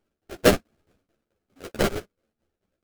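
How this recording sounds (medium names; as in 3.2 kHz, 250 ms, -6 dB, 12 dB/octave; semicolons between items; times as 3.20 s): aliases and images of a low sample rate 1 kHz, jitter 20%; tremolo saw down 4.6 Hz, depth 90%; a shimmering, thickened sound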